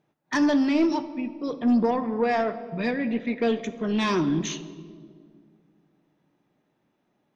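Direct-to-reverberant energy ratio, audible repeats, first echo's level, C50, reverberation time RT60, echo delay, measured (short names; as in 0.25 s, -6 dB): 10.5 dB, none, none, 13.5 dB, 2.1 s, none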